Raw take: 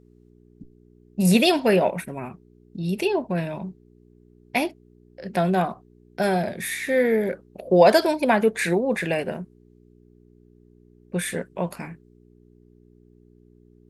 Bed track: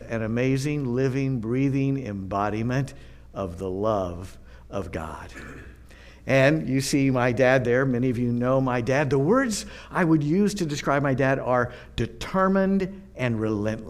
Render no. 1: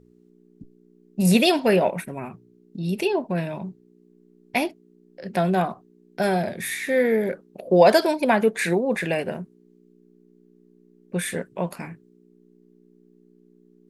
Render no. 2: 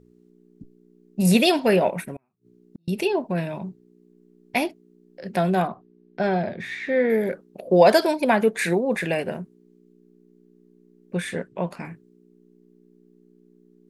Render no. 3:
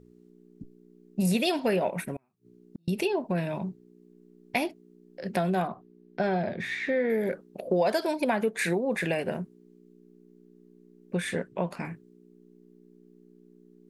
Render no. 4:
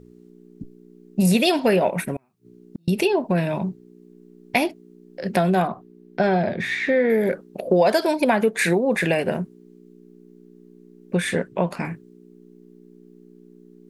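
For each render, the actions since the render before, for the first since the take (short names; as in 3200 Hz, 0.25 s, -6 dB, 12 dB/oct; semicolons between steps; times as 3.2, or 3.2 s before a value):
de-hum 60 Hz, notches 2
2.16–2.88 flipped gate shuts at -28 dBFS, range -38 dB; 5.67–7.1 air absorption 190 m; 11.17–11.85 air absorption 66 m
compressor 3:1, threshold -25 dBFS, peak gain reduction 12 dB
gain +7.5 dB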